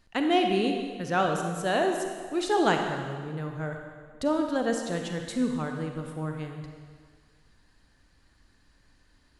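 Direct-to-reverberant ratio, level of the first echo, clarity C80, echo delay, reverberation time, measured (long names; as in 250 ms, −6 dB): 3.5 dB, no echo audible, 5.5 dB, no echo audible, 1.8 s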